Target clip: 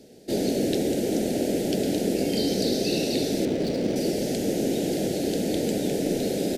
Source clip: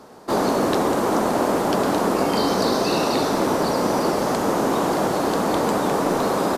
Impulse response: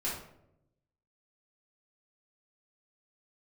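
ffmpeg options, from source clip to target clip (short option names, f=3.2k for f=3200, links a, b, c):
-filter_complex "[0:a]asuperstop=centerf=1100:order=4:qfactor=0.6,asettb=1/sr,asplit=3[a][b][c];[a]atrim=end=3.454[d];[b]atrim=start=3.45:end=3.96,asetpts=PTS-STARTPTS,afade=t=in:d=0.004:c=qsin,afade=t=out:st=0.506:d=0.004:c=qsin,adynamicsmooth=sensitivity=6.5:basefreq=1.4k[e];[c]atrim=start=3.956[f];[d][e]acrossfade=d=0.004:c1=hsin:c2=qsin[g];[g][f]acrossfade=d=0.004:c1=qsin:c2=hsin,volume=-2dB"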